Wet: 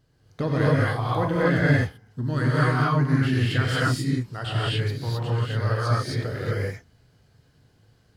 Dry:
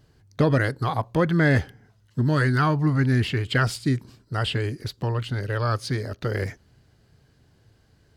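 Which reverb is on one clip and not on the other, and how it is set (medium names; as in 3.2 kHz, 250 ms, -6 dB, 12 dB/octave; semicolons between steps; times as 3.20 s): gated-style reverb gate 290 ms rising, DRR -7 dB; trim -7.5 dB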